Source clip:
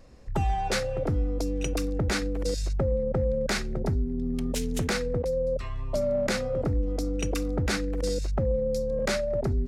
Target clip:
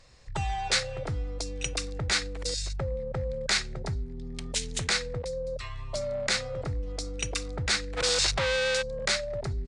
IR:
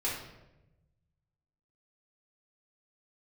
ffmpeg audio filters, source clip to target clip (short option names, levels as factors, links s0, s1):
-filter_complex "[0:a]asplit=3[s0][s1][s2];[s0]afade=t=out:st=7.96:d=0.02[s3];[s1]asplit=2[s4][s5];[s5]highpass=f=720:p=1,volume=44.7,asoftclip=type=tanh:threshold=0.141[s6];[s4][s6]amix=inputs=2:normalize=0,lowpass=f=4000:p=1,volume=0.501,afade=t=in:st=7.96:d=0.02,afade=t=out:st=8.81:d=0.02[s7];[s2]afade=t=in:st=8.81:d=0.02[s8];[s3][s7][s8]amix=inputs=3:normalize=0,aresample=22050,aresample=44100,equalizer=f=125:t=o:w=1:g=5,equalizer=f=250:t=o:w=1:g=-9,equalizer=f=1000:t=o:w=1:g=4,equalizer=f=2000:t=o:w=1:g=7,equalizer=f=4000:t=o:w=1:g=11,equalizer=f=8000:t=o:w=1:g=10,volume=0.473"